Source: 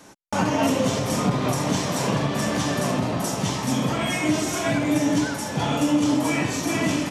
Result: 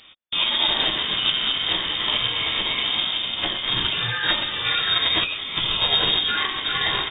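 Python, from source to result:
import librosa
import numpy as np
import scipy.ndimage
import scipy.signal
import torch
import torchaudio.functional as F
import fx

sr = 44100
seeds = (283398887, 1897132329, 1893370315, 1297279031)

y = fx.freq_invert(x, sr, carrier_hz=3400)
y = fx.formant_shift(y, sr, semitones=5)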